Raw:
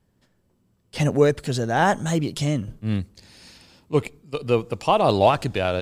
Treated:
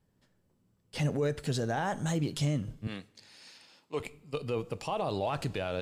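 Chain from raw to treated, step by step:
0:02.87–0:04.00: meter weighting curve A
brickwall limiter −17 dBFS, peak gain reduction 11.5 dB
coupled-rooms reverb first 0.33 s, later 1.7 s, from −18 dB, DRR 14 dB
level −6 dB

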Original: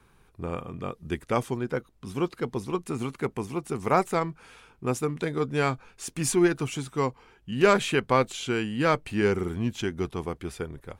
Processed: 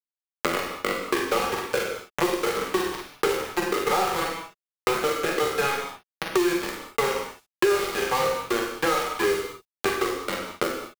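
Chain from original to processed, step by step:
peak hold with a decay on every bin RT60 1.55 s
low-pass filter 1,800 Hz 12 dB per octave
reverb reduction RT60 1.4 s
Butterworth high-pass 320 Hz 96 dB per octave
low-shelf EQ 470 Hz −2 dB
comb filter 2.4 ms, depth 87%
in parallel at +2.5 dB: downward compressor 16 to 1, threshold −26 dBFS, peak gain reduction 17.5 dB
on the sum: centre clipping without the shift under −16.5 dBFS
on a send: ambience of single reflections 42 ms −7.5 dB, 53 ms −7.5 dB
on the sum: reverb whose tail is shaped and stops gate 230 ms falling, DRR 0.5 dB
multiband upward and downward compressor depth 100%
level −7 dB

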